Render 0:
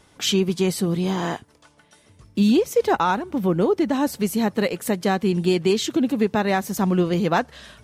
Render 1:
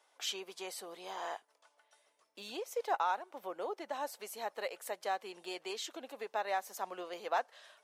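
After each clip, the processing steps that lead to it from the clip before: ladder high-pass 520 Hz, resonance 35%; trim -7 dB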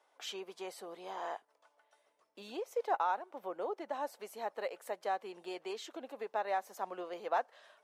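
treble shelf 2.1 kHz -10.5 dB; trim +2 dB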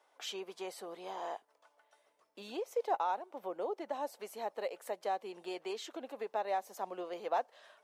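dynamic bell 1.5 kHz, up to -7 dB, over -51 dBFS, Q 1.3; trim +1.5 dB

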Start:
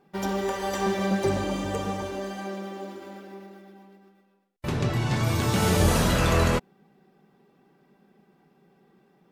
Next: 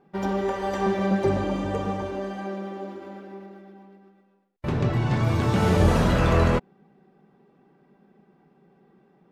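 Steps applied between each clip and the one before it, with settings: low-pass 1.7 kHz 6 dB/octave; trim +2.5 dB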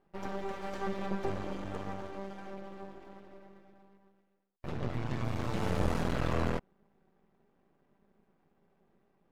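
half-wave rectifier; trim -8 dB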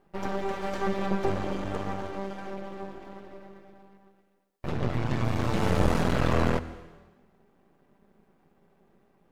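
reverberation RT60 1.2 s, pre-delay 118 ms, DRR 16 dB; trim +7 dB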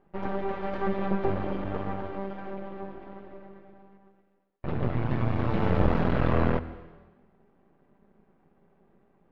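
distance through air 360 m; trim +1 dB

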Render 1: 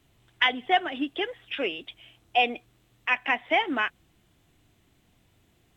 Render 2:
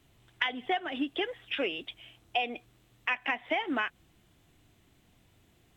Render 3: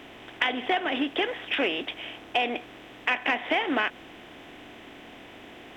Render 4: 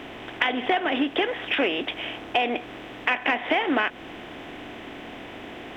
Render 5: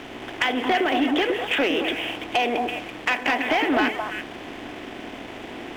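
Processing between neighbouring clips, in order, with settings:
compression 10:1, threshold -26 dBFS, peak gain reduction 10.5 dB
spectral levelling over time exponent 0.6; in parallel at -10 dB: hard clipper -20 dBFS, distortion -18 dB
treble shelf 4 kHz -7 dB; in parallel at +3 dB: compression, threshold -33 dBFS, peak gain reduction 11.5 dB
repeats whose band climbs or falls 111 ms, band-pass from 320 Hz, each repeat 1.4 oct, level -1 dB; waveshaping leveller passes 2; trim -5.5 dB

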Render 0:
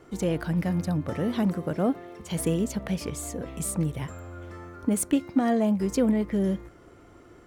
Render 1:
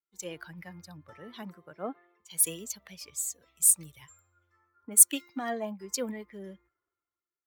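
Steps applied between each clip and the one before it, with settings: expander on every frequency bin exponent 1.5; tilt EQ +4.5 dB/octave; three bands expanded up and down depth 70%; trim -6.5 dB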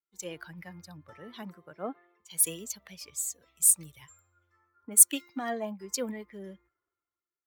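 no audible change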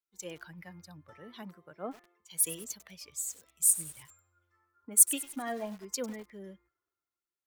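bit-crushed delay 99 ms, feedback 55%, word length 6-bit, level -14.5 dB; trim -3 dB

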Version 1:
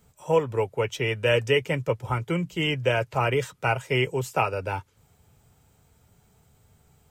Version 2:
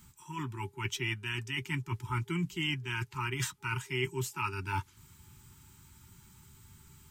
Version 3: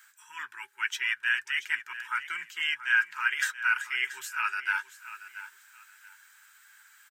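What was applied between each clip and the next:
reverse; compression 16:1, threshold -32 dBFS, peak gain reduction 17 dB; reverse; treble shelf 2.8 kHz +5 dB; FFT band-reject 400–850 Hz; trim +3 dB
resonant high-pass 1.6 kHz, resonance Q 9.8; feedback delay 681 ms, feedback 23%, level -14 dB

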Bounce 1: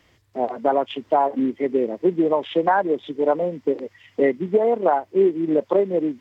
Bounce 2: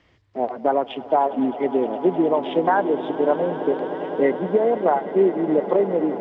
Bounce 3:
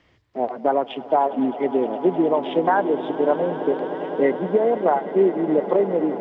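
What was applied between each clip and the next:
distance through air 130 m; echo with a slow build-up 103 ms, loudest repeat 8, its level -18 dB
hum notches 50/100 Hz

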